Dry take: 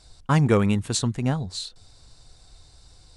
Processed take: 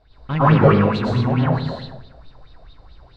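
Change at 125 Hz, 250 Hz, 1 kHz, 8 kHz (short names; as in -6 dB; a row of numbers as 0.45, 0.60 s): +6.0 dB, +5.5 dB, +10.0 dB, under -20 dB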